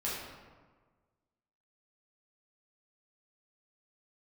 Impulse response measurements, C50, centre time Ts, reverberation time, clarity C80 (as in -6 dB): 0.0 dB, 82 ms, 1.5 s, 2.5 dB